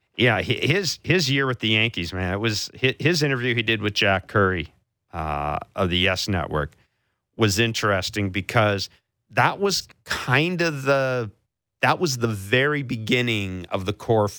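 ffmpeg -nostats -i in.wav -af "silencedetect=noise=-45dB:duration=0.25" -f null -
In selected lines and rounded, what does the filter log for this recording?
silence_start: 4.70
silence_end: 5.13 | silence_duration: 0.44
silence_start: 6.73
silence_end: 7.38 | silence_duration: 0.65
silence_start: 8.95
silence_end: 9.31 | silence_duration: 0.36
silence_start: 11.31
silence_end: 11.82 | silence_duration: 0.51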